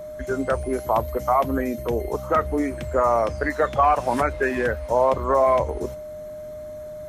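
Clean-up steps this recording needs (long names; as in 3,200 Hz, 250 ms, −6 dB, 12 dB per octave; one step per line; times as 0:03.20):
notch filter 610 Hz, Q 30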